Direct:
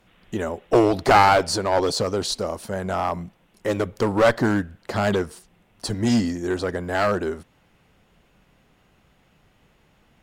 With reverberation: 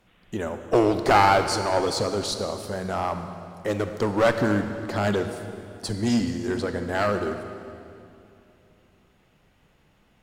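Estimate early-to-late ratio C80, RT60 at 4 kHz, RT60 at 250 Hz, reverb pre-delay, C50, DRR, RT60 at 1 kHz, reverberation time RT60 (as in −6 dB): 9.0 dB, 2.3 s, 3.2 s, 26 ms, 8.0 dB, 7.5 dB, 2.6 s, 2.7 s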